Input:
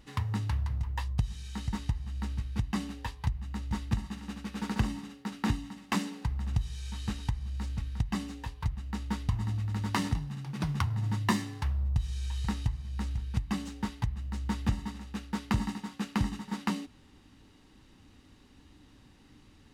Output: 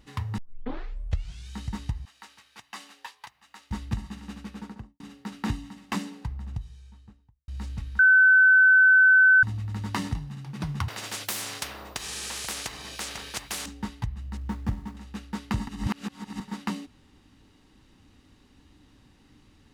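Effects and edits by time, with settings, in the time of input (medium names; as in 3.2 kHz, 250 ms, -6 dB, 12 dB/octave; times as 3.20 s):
0.38 s: tape start 1.12 s
2.05–3.71 s: high-pass 830 Hz
4.35–5.00 s: studio fade out
5.83–7.48 s: studio fade out
7.99–9.43 s: bleep 1.52 kHz -13 dBFS
10.88–13.66 s: spectrum-flattening compressor 10:1
14.37–14.97 s: median filter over 15 samples
15.68–16.40 s: reverse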